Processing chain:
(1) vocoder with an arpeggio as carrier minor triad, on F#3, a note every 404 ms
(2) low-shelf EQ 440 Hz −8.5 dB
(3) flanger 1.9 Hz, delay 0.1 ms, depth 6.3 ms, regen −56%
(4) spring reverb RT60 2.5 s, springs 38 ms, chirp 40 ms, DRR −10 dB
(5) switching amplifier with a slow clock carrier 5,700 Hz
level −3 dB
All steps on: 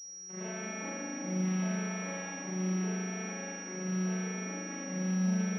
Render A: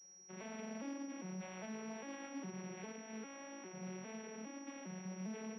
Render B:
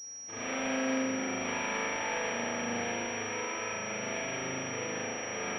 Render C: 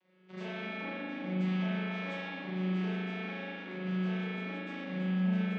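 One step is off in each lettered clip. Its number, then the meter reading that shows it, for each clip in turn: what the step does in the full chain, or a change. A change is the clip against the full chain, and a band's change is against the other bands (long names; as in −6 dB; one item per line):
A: 4, change in momentary loudness spread −3 LU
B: 1, 125 Hz band −18.5 dB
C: 5, 4 kHz band −2.5 dB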